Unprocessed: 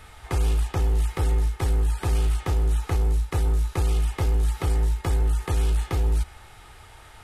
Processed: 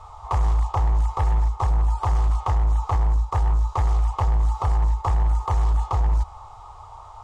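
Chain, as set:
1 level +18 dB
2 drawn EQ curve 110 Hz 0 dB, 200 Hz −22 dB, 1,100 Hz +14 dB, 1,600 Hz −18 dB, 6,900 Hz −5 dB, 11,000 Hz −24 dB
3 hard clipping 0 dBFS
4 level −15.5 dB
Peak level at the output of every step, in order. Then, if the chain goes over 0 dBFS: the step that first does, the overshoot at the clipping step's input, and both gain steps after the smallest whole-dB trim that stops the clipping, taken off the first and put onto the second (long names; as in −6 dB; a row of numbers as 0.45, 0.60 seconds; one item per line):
+4.5, +5.5, 0.0, −15.5 dBFS
step 1, 5.5 dB
step 1 +12 dB, step 4 −9.5 dB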